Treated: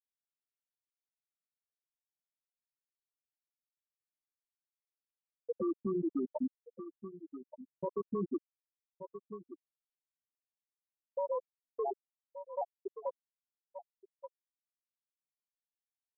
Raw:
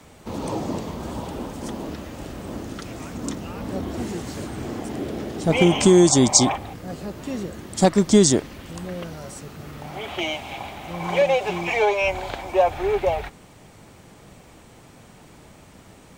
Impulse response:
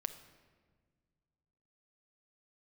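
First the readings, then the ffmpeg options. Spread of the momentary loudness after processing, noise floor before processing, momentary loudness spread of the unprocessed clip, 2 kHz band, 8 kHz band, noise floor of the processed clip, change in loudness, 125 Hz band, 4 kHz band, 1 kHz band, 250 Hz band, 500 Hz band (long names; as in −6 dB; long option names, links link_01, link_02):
18 LU, −49 dBFS, 19 LU, below −40 dB, below −40 dB, below −85 dBFS, −18.0 dB, −26.5 dB, below −40 dB, −19.5 dB, −19.5 dB, −18.5 dB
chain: -filter_complex "[0:a]highpass=frequency=120:poles=1,afftfilt=real='re*gte(hypot(re,im),0.794)':imag='im*gte(hypot(re,im),0.794)':win_size=1024:overlap=0.75,tremolo=f=11:d=0.39,acrossover=split=5300[link_01][link_02];[link_02]acompressor=threshold=-25dB:ratio=4:attack=1:release=60[link_03];[link_01][link_03]amix=inputs=2:normalize=0,flanger=delay=6:depth=4.5:regen=-11:speed=0.23:shape=sinusoidal,acrusher=samples=29:mix=1:aa=0.000001,acrossover=split=200 2100:gain=0.178 1 0.224[link_04][link_05][link_06];[link_04][link_05][link_06]amix=inputs=3:normalize=0,afftfilt=real='re*gte(hypot(re,im),0.251)':imag='im*gte(hypot(re,im),0.251)':win_size=1024:overlap=0.75,acompressor=threshold=-32dB:ratio=2.5,asplit=2[link_07][link_08];[link_08]aecho=0:1:1175:0.0944[link_09];[link_07][link_09]amix=inputs=2:normalize=0,alimiter=level_in=10dB:limit=-24dB:level=0:latency=1:release=22,volume=-10dB,volume=6.5dB"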